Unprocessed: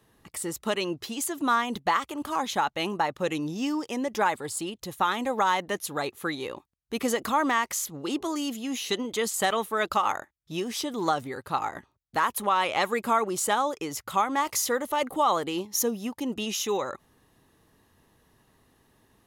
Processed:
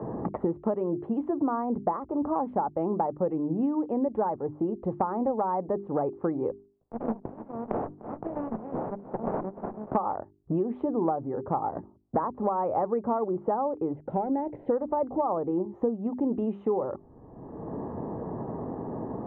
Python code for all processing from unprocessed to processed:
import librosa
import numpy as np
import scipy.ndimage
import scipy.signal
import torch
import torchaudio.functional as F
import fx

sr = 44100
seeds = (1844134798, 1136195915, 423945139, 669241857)

y = fx.chain(x, sr, fx.cheby2_highpass(hz=2600.0, order=4, stop_db=60),
    fx.echo_feedback(ms=299, feedback_pct=34, wet_db=-18),
    fx.running_max(window=5), at=(6.51, 9.95))
y = fx.chain(y, sr, fx.block_float(bits=5),
    fx.peak_eq(hz=75.0, db=-11.5, octaves=0.88),
    fx.fixed_phaser(hz=2800.0, stages=4), at=(13.96, 14.7))
y = scipy.signal.sosfilt(scipy.signal.cheby2(4, 80, 4800.0, 'lowpass', fs=sr, output='sos'), y)
y = fx.hum_notches(y, sr, base_hz=50, count=8)
y = fx.band_squash(y, sr, depth_pct=100)
y = y * 10.0 ** (3.0 / 20.0)